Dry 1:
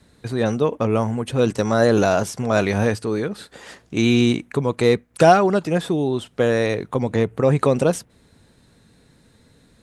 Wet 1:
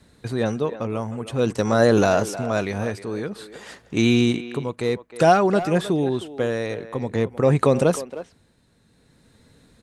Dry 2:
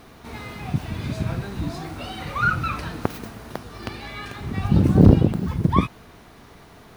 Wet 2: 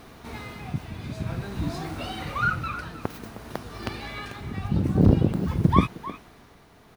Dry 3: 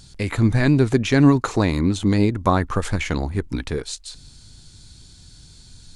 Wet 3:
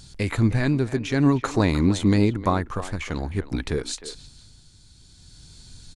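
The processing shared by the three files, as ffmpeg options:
ffmpeg -i in.wav -filter_complex "[0:a]tremolo=f=0.52:d=0.56,asplit=2[link_01][link_02];[link_02]adelay=310,highpass=300,lowpass=3400,asoftclip=type=hard:threshold=-10dB,volume=-13dB[link_03];[link_01][link_03]amix=inputs=2:normalize=0" out.wav

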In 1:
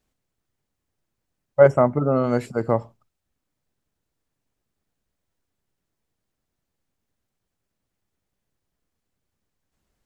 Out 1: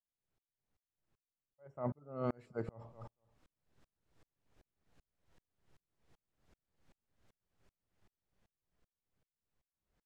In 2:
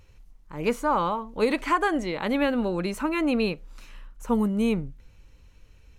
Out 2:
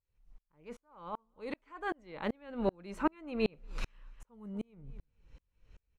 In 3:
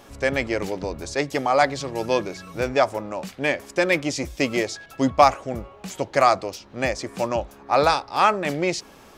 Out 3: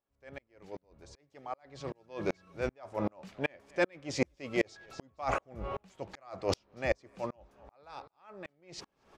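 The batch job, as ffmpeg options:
ffmpeg -i in.wav -af "aemphasis=mode=reproduction:type=50fm,areverse,acompressor=threshold=-36dB:ratio=16,areverse,equalizer=frequency=260:width_type=o:width=0.58:gain=-3,dynaudnorm=framelen=130:gausssize=31:maxgain=15.5dB,aecho=1:1:236|472:0.0708|0.0234,aeval=exprs='val(0)*pow(10,-39*if(lt(mod(-2.6*n/s,1),2*abs(-2.6)/1000),1-mod(-2.6*n/s,1)/(2*abs(-2.6)/1000),(mod(-2.6*n/s,1)-2*abs(-2.6)/1000)/(1-2*abs(-2.6)/1000))/20)':channel_layout=same" out.wav

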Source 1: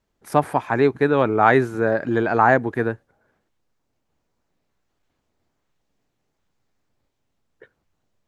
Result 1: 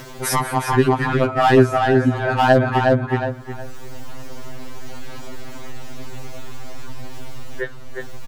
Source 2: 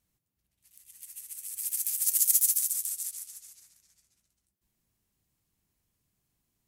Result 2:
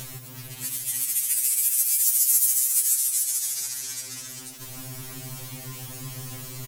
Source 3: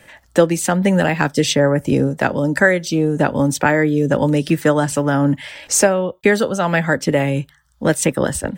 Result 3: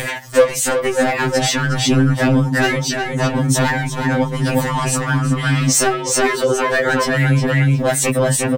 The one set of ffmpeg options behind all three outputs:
ffmpeg -i in.wav -filter_complex "[0:a]acompressor=mode=upward:threshold=-23dB:ratio=2.5,asoftclip=type=hard:threshold=-11.5dB,asplit=2[link_01][link_02];[link_02]adelay=362,lowpass=frequency=4600:poles=1,volume=-4.5dB,asplit=2[link_03][link_04];[link_04]adelay=362,lowpass=frequency=4600:poles=1,volume=0.21,asplit=2[link_05][link_06];[link_06]adelay=362,lowpass=frequency=4600:poles=1,volume=0.21[link_07];[link_01][link_03][link_05][link_07]amix=inputs=4:normalize=0,alimiter=level_in=17.5dB:limit=-1dB:release=50:level=0:latency=1,afftfilt=real='re*2.45*eq(mod(b,6),0)':imag='im*2.45*eq(mod(b,6),0)':win_size=2048:overlap=0.75,volume=-5dB" out.wav

